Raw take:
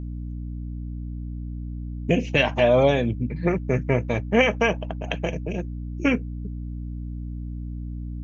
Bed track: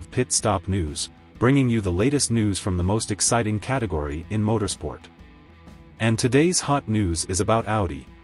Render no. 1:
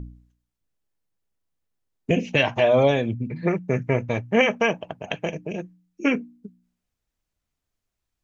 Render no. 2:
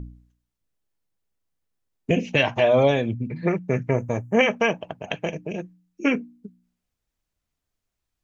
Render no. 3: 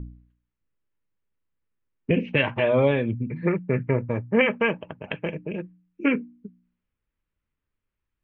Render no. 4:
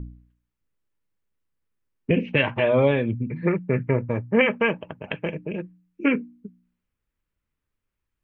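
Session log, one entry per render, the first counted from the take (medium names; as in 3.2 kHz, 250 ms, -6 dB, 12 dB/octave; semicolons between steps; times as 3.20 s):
de-hum 60 Hz, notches 5
3.91–4.39 s: FFT filter 1.1 kHz 0 dB, 4 kHz -16 dB, 6.8 kHz +8 dB
low-pass 2.8 kHz 24 dB/octave; peaking EQ 710 Hz -12 dB 0.31 oct
trim +1 dB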